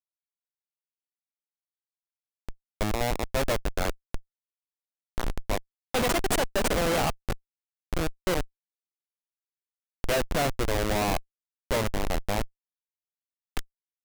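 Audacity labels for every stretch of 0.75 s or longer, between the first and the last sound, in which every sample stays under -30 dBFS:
4.170000	5.180000	silence
8.430000	10.040000	silence
12.440000	13.570000	silence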